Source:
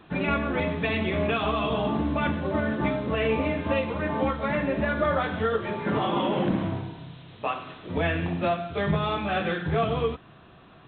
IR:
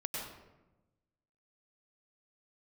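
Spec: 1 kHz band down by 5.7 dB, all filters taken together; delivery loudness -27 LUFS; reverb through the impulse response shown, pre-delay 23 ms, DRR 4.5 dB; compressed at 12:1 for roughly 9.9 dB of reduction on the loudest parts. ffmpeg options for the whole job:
-filter_complex "[0:a]equalizer=f=1000:t=o:g=-8,acompressor=threshold=0.0282:ratio=12,asplit=2[s0][s1];[1:a]atrim=start_sample=2205,adelay=23[s2];[s1][s2]afir=irnorm=-1:irlink=0,volume=0.473[s3];[s0][s3]amix=inputs=2:normalize=0,volume=2.24"

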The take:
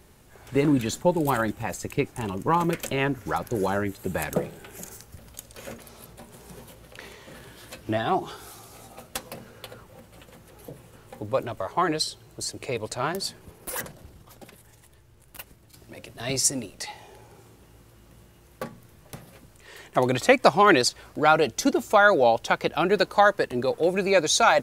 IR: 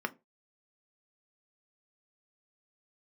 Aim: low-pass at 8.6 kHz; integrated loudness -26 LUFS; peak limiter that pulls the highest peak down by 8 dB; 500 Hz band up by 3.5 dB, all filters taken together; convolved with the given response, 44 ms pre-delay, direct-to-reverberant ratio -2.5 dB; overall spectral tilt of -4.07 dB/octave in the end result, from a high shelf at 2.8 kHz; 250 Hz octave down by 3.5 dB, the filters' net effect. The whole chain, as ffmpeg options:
-filter_complex "[0:a]lowpass=8600,equalizer=f=250:t=o:g=-8,equalizer=f=500:t=o:g=6.5,highshelf=f=2800:g=-8,alimiter=limit=0.299:level=0:latency=1,asplit=2[s0][s1];[1:a]atrim=start_sample=2205,adelay=44[s2];[s1][s2]afir=irnorm=-1:irlink=0,volume=0.75[s3];[s0][s3]amix=inputs=2:normalize=0,volume=0.531"

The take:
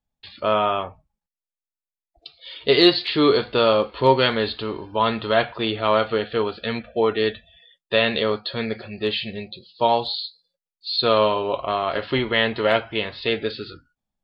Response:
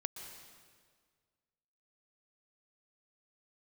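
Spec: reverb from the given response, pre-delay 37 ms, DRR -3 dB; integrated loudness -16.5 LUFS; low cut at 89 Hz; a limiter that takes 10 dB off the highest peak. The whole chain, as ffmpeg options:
-filter_complex "[0:a]highpass=89,alimiter=limit=0.251:level=0:latency=1,asplit=2[s0][s1];[1:a]atrim=start_sample=2205,adelay=37[s2];[s1][s2]afir=irnorm=-1:irlink=0,volume=1.58[s3];[s0][s3]amix=inputs=2:normalize=0,volume=1.5"

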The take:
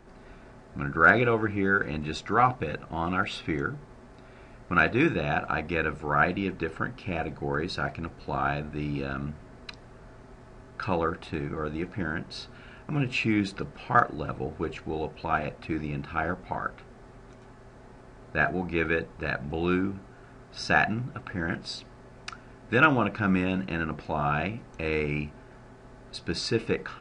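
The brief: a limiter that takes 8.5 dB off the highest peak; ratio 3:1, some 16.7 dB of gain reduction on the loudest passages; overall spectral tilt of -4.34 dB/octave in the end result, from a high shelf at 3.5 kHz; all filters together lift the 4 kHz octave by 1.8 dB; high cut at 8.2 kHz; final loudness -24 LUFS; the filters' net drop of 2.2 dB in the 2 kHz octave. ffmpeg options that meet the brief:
-af "lowpass=8200,equalizer=f=2000:t=o:g=-3,highshelf=f=3500:g=-6.5,equalizer=f=4000:t=o:g=7.5,acompressor=threshold=0.0112:ratio=3,volume=8.91,alimiter=limit=0.266:level=0:latency=1"

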